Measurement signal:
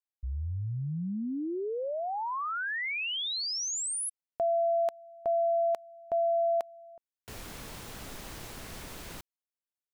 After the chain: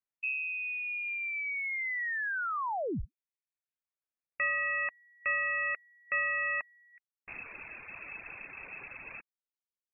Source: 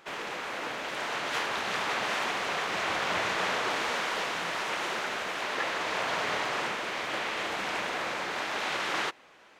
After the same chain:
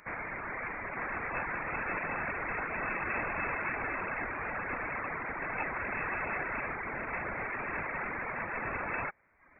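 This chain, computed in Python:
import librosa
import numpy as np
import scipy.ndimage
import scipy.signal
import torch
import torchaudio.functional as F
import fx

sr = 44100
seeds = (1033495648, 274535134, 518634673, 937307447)

y = np.minimum(x, 2.0 * 10.0 ** (-29.0 / 20.0) - x)
y = fx.freq_invert(y, sr, carrier_hz=2600)
y = fx.dereverb_blind(y, sr, rt60_s=0.79)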